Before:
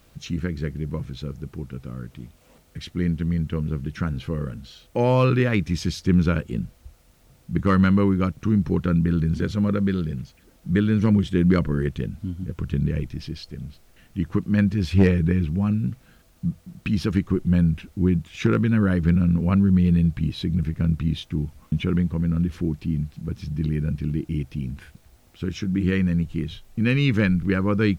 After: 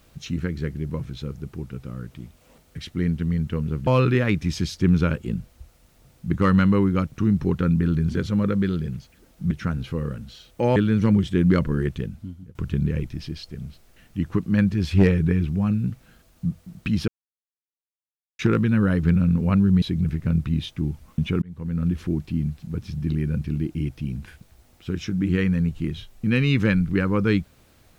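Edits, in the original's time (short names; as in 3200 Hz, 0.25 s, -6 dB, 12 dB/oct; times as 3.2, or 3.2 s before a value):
3.87–5.12 move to 10.76
11.93–12.55 fade out, to -19.5 dB
17.08–18.39 mute
19.82–20.36 cut
21.96–22.43 fade in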